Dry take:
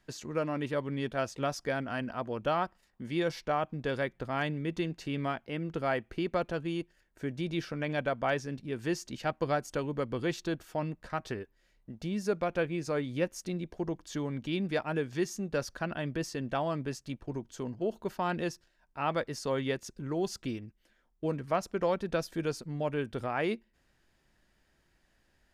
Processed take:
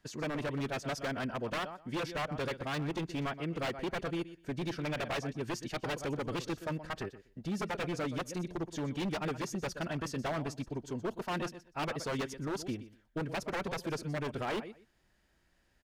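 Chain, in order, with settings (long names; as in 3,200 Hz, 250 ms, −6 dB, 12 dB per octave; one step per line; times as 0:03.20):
phase-vocoder stretch with locked phases 0.62×
repeating echo 123 ms, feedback 17%, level −15 dB
wave folding −29 dBFS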